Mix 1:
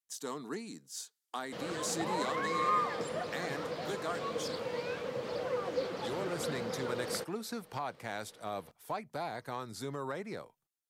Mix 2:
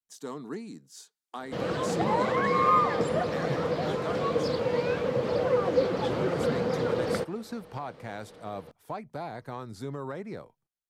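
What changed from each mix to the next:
background +8.0 dB
master: add spectral tilt −2 dB per octave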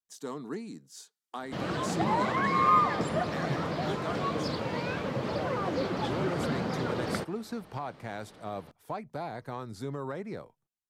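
background: add parametric band 490 Hz −13.5 dB 0.24 octaves

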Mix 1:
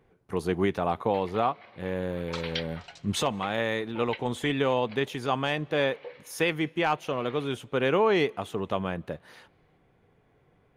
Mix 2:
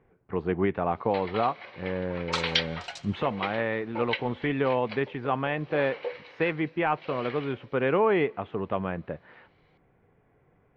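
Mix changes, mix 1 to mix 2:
speech: add low-pass filter 2,500 Hz 24 dB per octave
background +8.5 dB

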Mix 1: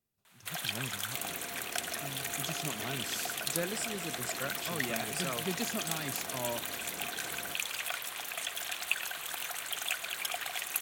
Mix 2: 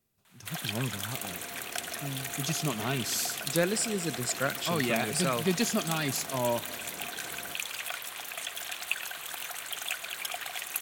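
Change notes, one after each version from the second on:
speech +8.5 dB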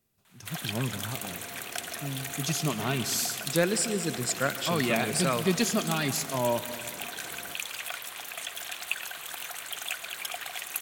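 speech: send +9.5 dB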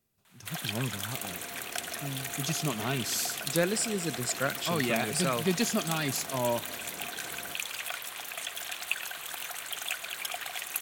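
speech: send −11.0 dB

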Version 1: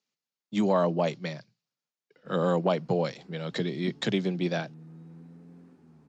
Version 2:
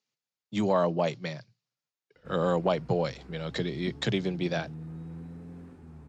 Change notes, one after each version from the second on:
background +7.5 dB
master: add low shelf with overshoot 120 Hz +13.5 dB, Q 1.5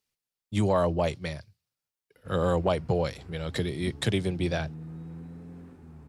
speech: remove Chebyshev band-pass filter 120–7,000 Hz, order 5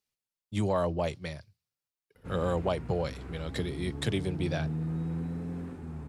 speech −4.0 dB
background +8.0 dB

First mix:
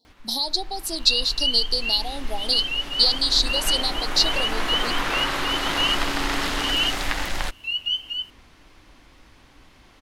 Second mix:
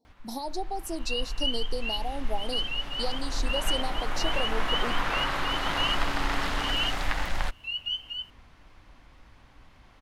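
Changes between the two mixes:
speech: add flat-topped bell 3,300 Hz −13 dB 1.3 octaves
first sound: add parametric band 340 Hz −7.5 dB 1.2 octaves
master: add high-shelf EQ 2,300 Hz −10.5 dB

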